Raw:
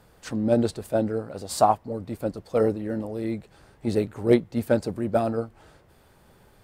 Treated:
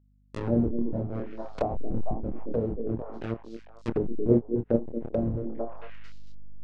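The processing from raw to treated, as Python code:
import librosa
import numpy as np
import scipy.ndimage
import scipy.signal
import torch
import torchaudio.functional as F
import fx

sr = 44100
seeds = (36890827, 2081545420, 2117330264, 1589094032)

p1 = fx.delta_hold(x, sr, step_db=-19.0)
p2 = scipy.signal.sosfilt(scipy.signal.ellip(4, 1.0, 40, 9600.0, 'lowpass', fs=sr, output='sos'), p1)
p3 = fx.peak_eq(p2, sr, hz=500.0, db=3.5, octaves=1.2)
p4 = fx.doubler(p3, sr, ms=26.0, db=-3)
p5 = p4 + fx.echo_stepped(p4, sr, ms=224, hz=320.0, octaves=1.4, feedback_pct=70, wet_db=-3, dry=0)
p6 = fx.add_hum(p5, sr, base_hz=50, snr_db=27)
p7 = fx.env_lowpass_down(p6, sr, base_hz=370.0, full_db=-19.0)
y = fx.upward_expand(p7, sr, threshold_db=-43.0, expansion=1.5)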